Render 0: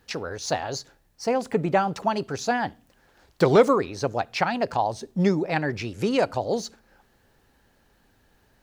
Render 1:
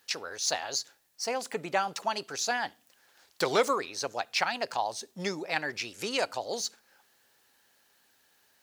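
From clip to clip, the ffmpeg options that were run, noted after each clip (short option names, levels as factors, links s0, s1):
-af "highpass=f=750:p=1,highshelf=f=2600:g=10,volume=0.596"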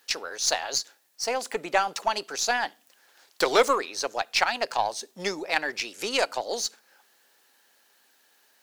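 -af "highpass=260,aeval=exprs='0.251*(cos(1*acos(clip(val(0)/0.251,-1,1)))-cos(1*PI/2))+0.00501*(cos(6*acos(clip(val(0)/0.251,-1,1)))-cos(6*PI/2))+0.00708*(cos(7*acos(clip(val(0)/0.251,-1,1)))-cos(7*PI/2))':c=same,volume=1.88"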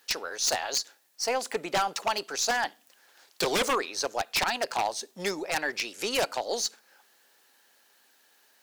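-af "aeval=exprs='0.119*(abs(mod(val(0)/0.119+3,4)-2)-1)':c=same"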